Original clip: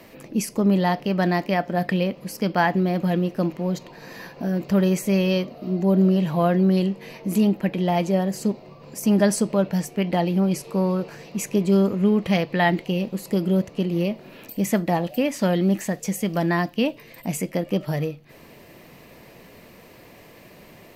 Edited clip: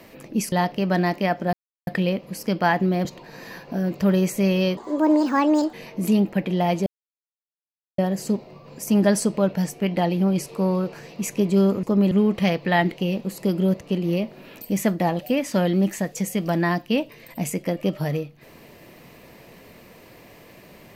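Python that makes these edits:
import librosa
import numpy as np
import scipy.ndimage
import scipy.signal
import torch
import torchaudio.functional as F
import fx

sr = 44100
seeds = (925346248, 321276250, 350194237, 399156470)

y = fx.edit(x, sr, fx.move(start_s=0.52, length_s=0.28, to_s=11.99),
    fx.insert_silence(at_s=1.81, length_s=0.34),
    fx.cut(start_s=2.99, length_s=0.75),
    fx.speed_span(start_s=5.46, length_s=1.55, speed=1.61),
    fx.insert_silence(at_s=8.14, length_s=1.12), tone=tone)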